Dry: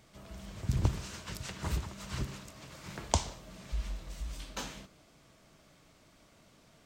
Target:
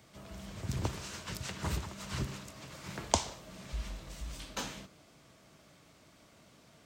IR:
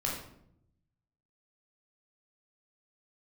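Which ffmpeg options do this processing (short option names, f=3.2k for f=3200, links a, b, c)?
-filter_complex "[0:a]highpass=62,acrossover=split=300|5900[a][b][c];[a]alimiter=level_in=4.5dB:limit=-24dB:level=0:latency=1:release=464,volume=-4.5dB[d];[d][b][c]amix=inputs=3:normalize=0,volume=1.5dB"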